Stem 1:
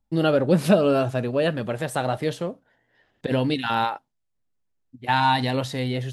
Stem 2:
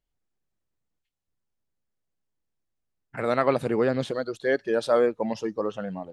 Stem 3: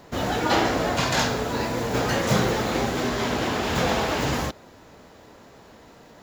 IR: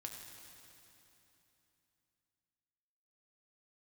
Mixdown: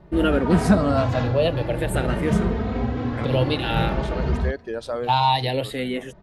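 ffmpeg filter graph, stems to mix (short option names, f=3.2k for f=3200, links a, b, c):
-filter_complex "[0:a]asplit=2[a][b];[b]afreqshift=-0.52[c];[a][c]amix=inputs=2:normalize=1,volume=3dB,asplit=2[d][e];[1:a]acompressor=threshold=-30dB:ratio=2,volume=0dB[f];[2:a]lowpass=4.2k,aemphasis=mode=reproduction:type=riaa,asplit=2[g][h];[h]adelay=2.9,afreqshift=0.5[i];[g][i]amix=inputs=2:normalize=1,volume=-3.5dB[j];[e]apad=whole_len=270323[k];[f][k]sidechaincompress=threshold=-35dB:ratio=8:attack=16:release=122[l];[d][l][j]amix=inputs=3:normalize=0"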